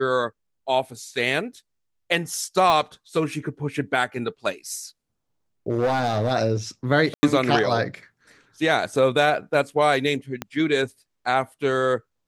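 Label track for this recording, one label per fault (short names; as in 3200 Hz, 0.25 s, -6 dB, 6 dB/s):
2.700000	2.700000	pop -9 dBFS
5.690000	6.320000	clipped -17 dBFS
7.140000	7.230000	gap 90 ms
10.420000	10.420000	pop -13 dBFS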